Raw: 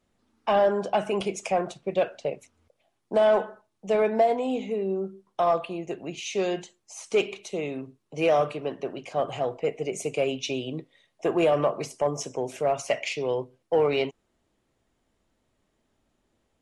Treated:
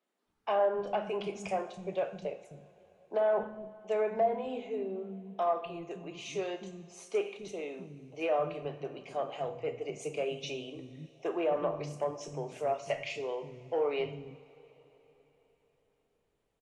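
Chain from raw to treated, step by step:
treble cut that deepens with the level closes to 1,800 Hz, closed at −17.5 dBFS
three-band delay without the direct sound mids, highs, lows 30/260 ms, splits 250/5,900 Hz
coupled-rooms reverb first 0.53 s, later 4.2 s, from −18 dB, DRR 7.5 dB
level −8 dB

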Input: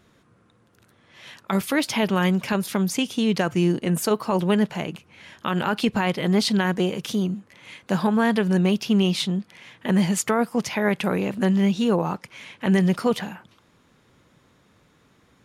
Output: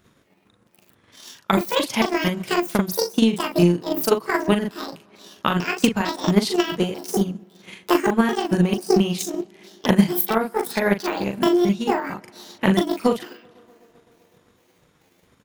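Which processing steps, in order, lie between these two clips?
pitch shifter gated in a rhythm +10 semitones, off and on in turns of 224 ms
high-shelf EQ 11,000 Hz +9 dB
double-tracking delay 40 ms −2.5 dB
tape delay 126 ms, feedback 83%, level −20 dB, low-pass 3,000 Hz
transient designer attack +11 dB, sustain −6 dB
level −3.5 dB

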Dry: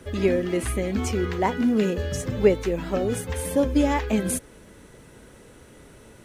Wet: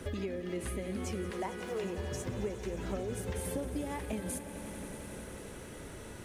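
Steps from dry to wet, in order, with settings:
0:01.30–0:01.84: Butterworth high-pass 370 Hz 48 dB per octave
downward compressor 12 to 1, threshold −36 dBFS, peak gain reduction 24.5 dB
on a send: echo that builds up and dies away 90 ms, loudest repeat 5, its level −15.5 dB
on the sum: level +1.5 dB

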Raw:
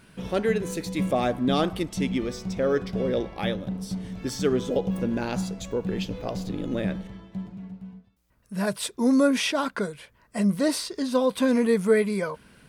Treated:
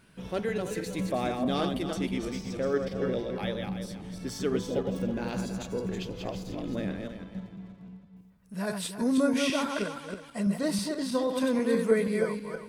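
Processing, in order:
feedback delay that plays each chunk backwards 161 ms, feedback 50%, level −4 dB
level −6 dB

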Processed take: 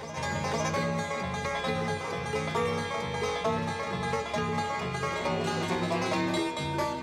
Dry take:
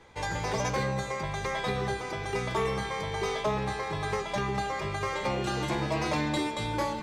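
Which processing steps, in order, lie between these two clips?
frequency shifter +33 Hz
backwards echo 507 ms −10 dB

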